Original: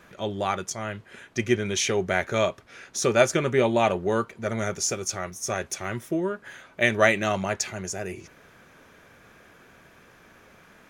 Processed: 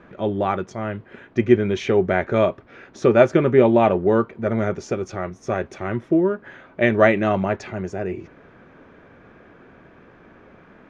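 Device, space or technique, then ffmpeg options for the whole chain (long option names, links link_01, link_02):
phone in a pocket: -af "lowpass=3500,equalizer=frequency=300:width_type=o:width=1.1:gain=4.5,highshelf=frequency=2200:gain=-12,volume=5.5dB"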